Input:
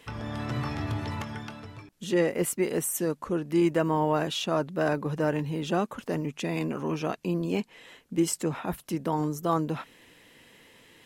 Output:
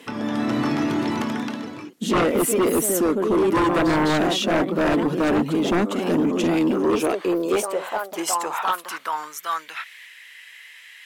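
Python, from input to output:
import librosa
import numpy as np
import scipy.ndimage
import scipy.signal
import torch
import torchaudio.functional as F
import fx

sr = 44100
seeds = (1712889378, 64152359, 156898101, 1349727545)

y = fx.echo_pitch(x, sr, ms=216, semitones=2, count=2, db_per_echo=-6.0)
y = fx.filter_sweep_highpass(y, sr, from_hz=250.0, to_hz=1900.0, start_s=6.48, end_s=9.7, q=2.5)
y = fx.fold_sine(y, sr, drive_db=11, ceiling_db=-7.5)
y = y * 10.0 ** (-7.5 / 20.0)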